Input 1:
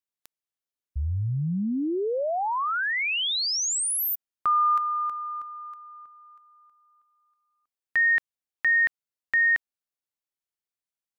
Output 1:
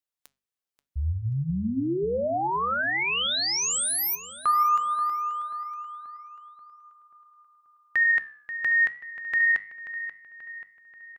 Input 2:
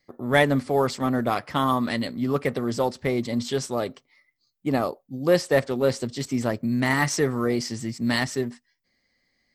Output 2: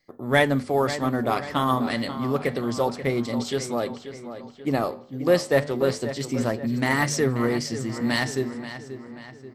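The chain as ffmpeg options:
-filter_complex "[0:a]bandreject=f=50:t=h:w=6,bandreject=f=100:t=h:w=6,bandreject=f=150:t=h:w=6,bandreject=f=200:t=h:w=6,bandreject=f=250:t=h:w=6,flanger=delay=6.5:depth=8.9:regen=84:speed=0.29:shape=sinusoidal,asplit=2[a][b];[b]adelay=534,lowpass=f=4.2k:p=1,volume=-11.5dB,asplit=2[c][d];[d]adelay=534,lowpass=f=4.2k:p=1,volume=0.53,asplit=2[e][f];[f]adelay=534,lowpass=f=4.2k:p=1,volume=0.53,asplit=2[g][h];[h]adelay=534,lowpass=f=4.2k:p=1,volume=0.53,asplit=2[i][j];[j]adelay=534,lowpass=f=4.2k:p=1,volume=0.53,asplit=2[k][l];[l]adelay=534,lowpass=f=4.2k:p=1,volume=0.53[m];[c][e][g][i][k][m]amix=inputs=6:normalize=0[n];[a][n]amix=inputs=2:normalize=0,volume=4.5dB"

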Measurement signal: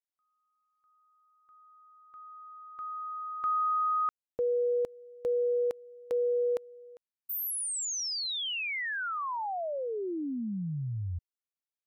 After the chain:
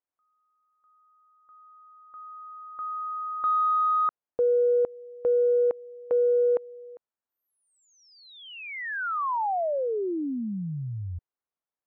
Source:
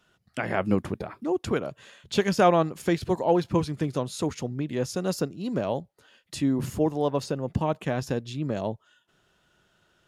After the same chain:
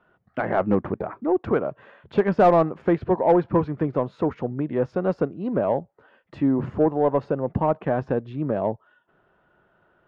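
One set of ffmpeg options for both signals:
-filter_complex "[0:a]lowpass=1.5k,volume=13dB,asoftclip=hard,volume=-13dB,asplit=2[a][b];[b]highpass=f=720:p=1,volume=10dB,asoftclip=type=tanh:threshold=-13dB[c];[a][c]amix=inputs=2:normalize=0,lowpass=f=1.1k:p=1,volume=-6dB,volume=5.5dB"

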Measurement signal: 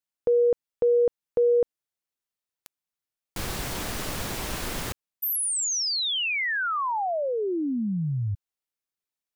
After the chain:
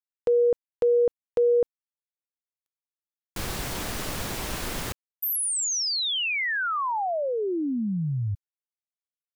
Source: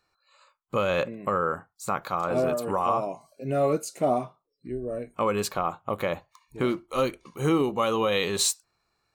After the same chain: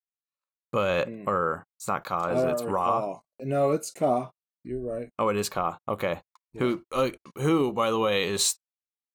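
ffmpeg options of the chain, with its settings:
-af "agate=range=-40dB:threshold=-55dB:ratio=16:release=40:detection=peak"

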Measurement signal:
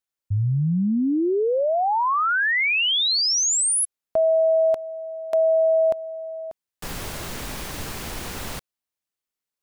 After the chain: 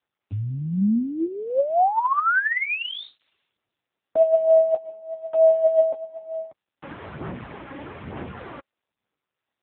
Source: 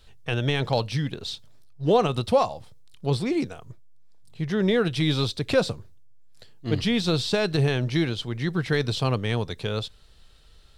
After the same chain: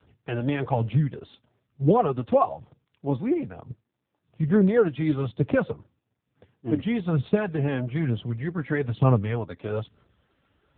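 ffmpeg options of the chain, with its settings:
-filter_complex "[0:a]lowpass=1.7k,adynamicequalizer=threshold=0.00708:dfrequency=350:dqfactor=5:tfrequency=350:tqfactor=5:attack=5:release=100:ratio=0.438:range=3:mode=cutabove:tftype=bell,aphaser=in_gain=1:out_gain=1:delay=3.7:decay=0.53:speed=1.1:type=sinusoidal,acrossover=split=460|1300[a][b][c];[c]crystalizer=i=1:c=0[d];[a][b][d]amix=inputs=3:normalize=0" -ar 8000 -c:a libopencore_amrnb -b:a 6700

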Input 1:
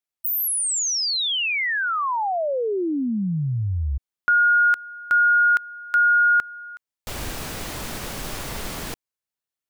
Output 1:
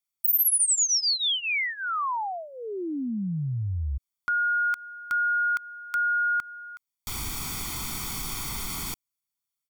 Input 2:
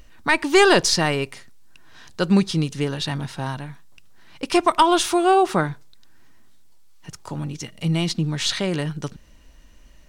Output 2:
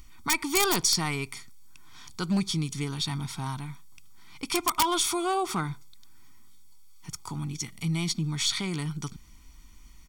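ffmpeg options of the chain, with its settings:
-af "aeval=exprs='(mod(2*val(0)+1,2)-1)/2':c=same,aecho=1:1:0.9:0.83,asoftclip=type=hard:threshold=-9dB,acompressor=threshold=-25dB:ratio=1.5:attack=0.88:release=117:knee=1:detection=rms,highshelf=f=3.7k:g=9,volume=-6.5dB"

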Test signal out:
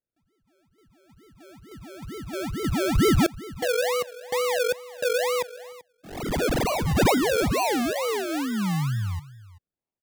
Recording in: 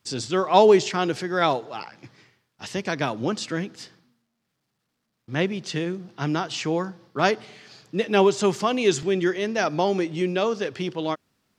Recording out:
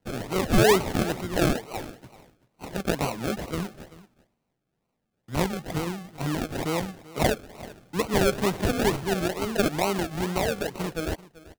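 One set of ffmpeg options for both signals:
-filter_complex "[0:a]asoftclip=type=tanh:threshold=-6dB,highpass=110,equalizer=f=250:t=q:w=4:g=-4,equalizer=f=360:t=q:w=4:g=-6,equalizer=f=570:t=q:w=4:g=-4,equalizer=f=2.4k:t=q:w=4:g=6,equalizer=f=3.7k:t=q:w=4:g=-4,lowpass=f=7.5k:w=0.5412,lowpass=f=7.5k:w=1.3066,acrusher=samples=36:mix=1:aa=0.000001:lfo=1:lforange=21.6:lforate=2.2,asplit=2[a][b];[b]aecho=0:1:386:0.112[c];[a][c]amix=inputs=2:normalize=0"

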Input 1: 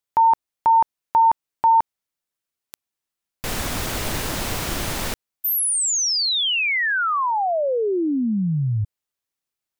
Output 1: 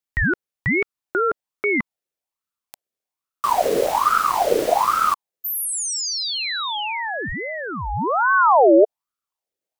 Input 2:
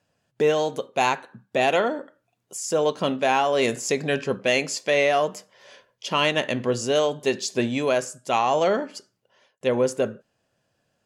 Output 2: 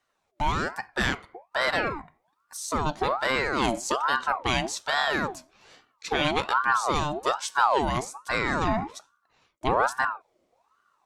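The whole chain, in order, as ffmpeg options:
-af "asubboost=boost=6.5:cutoff=200,aeval=exprs='val(0)*sin(2*PI*880*n/s+880*0.5/1.2*sin(2*PI*1.2*n/s))':c=same,volume=-1dB"

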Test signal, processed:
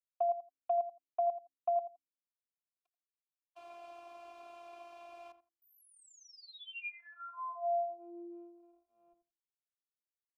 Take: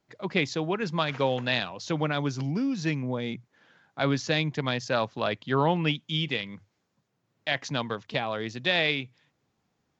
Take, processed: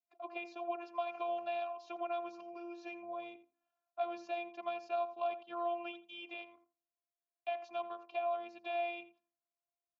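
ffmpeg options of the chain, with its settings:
-filter_complex "[0:a]afftfilt=real='hypot(re,im)*cos(PI*b)':imag='0':win_size=512:overlap=0.75,agate=range=-17dB:threshold=-55dB:ratio=16:detection=peak,bandreject=f=67.97:t=h:w=4,bandreject=f=135.94:t=h:w=4,bandreject=f=203.91:t=h:w=4,bandreject=f=271.88:t=h:w=4,bandreject=f=339.85:t=h:w=4,acrossover=split=2300[a][b];[b]alimiter=level_in=5.5dB:limit=-24dB:level=0:latency=1,volume=-5.5dB[c];[a][c]amix=inputs=2:normalize=0,acrossover=split=300|3000[d][e][f];[e]acompressor=threshold=-32dB:ratio=6[g];[d][g][f]amix=inputs=3:normalize=0,asplit=3[h][i][j];[h]bandpass=f=730:t=q:w=8,volume=0dB[k];[i]bandpass=f=1.09k:t=q:w=8,volume=-6dB[l];[j]bandpass=f=2.44k:t=q:w=8,volume=-9dB[m];[k][l][m]amix=inputs=3:normalize=0,asplit=2[n][o];[o]adelay=84,lowpass=f=1.4k:p=1,volume=-11dB,asplit=2[p][q];[q]adelay=84,lowpass=f=1.4k:p=1,volume=0.18[r];[p][r]amix=inputs=2:normalize=0[s];[n][s]amix=inputs=2:normalize=0,volume=3.5dB"

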